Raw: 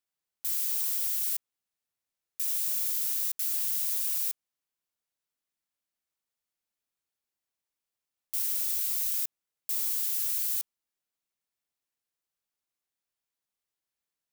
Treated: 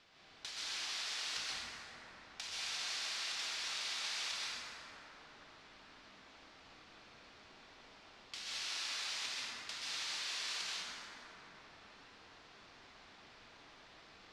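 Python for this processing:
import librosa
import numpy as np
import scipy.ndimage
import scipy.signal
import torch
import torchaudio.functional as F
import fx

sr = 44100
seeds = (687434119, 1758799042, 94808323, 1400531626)

y = scipy.signal.sosfilt(scipy.signal.butter(4, 4600.0, 'lowpass', fs=sr, output='sos'), x)
y = fx.hum_notches(y, sr, base_hz=60, count=4)
y = fx.over_compress(y, sr, threshold_db=-58.0, ratio=-0.5)
y = fx.rev_plate(y, sr, seeds[0], rt60_s=4.0, hf_ratio=0.35, predelay_ms=115, drr_db=-8.0)
y = y * 10.0 ** (15.5 / 20.0)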